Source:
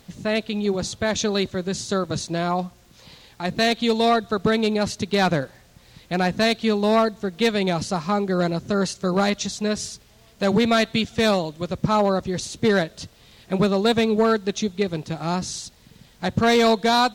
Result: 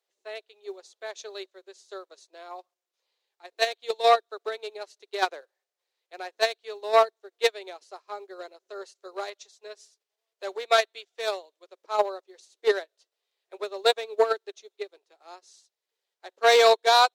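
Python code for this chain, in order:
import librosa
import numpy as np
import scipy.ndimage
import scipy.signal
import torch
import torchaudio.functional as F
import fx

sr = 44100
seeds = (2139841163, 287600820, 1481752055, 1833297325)

p1 = scipy.signal.sosfilt(scipy.signal.cheby1(5, 1.0, 380.0, 'highpass', fs=sr, output='sos'), x)
p2 = fx.level_steps(p1, sr, step_db=19)
p3 = p1 + (p2 * librosa.db_to_amplitude(-2.5))
p4 = fx.upward_expand(p3, sr, threshold_db=-34.0, expansion=2.5)
y = p4 * librosa.db_to_amplitude(-1.5)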